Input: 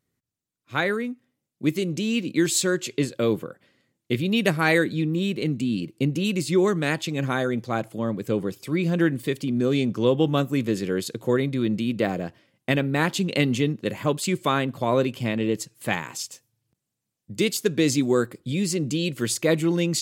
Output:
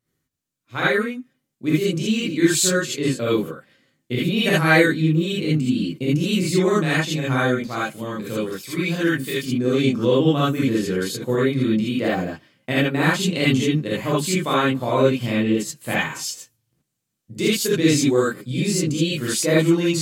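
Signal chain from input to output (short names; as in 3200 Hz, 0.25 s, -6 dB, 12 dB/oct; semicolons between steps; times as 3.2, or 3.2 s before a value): 7.58–9.46 tilt shelf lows -5 dB, about 1300 Hz; non-linear reverb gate 0.1 s rising, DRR -7.5 dB; gain -4 dB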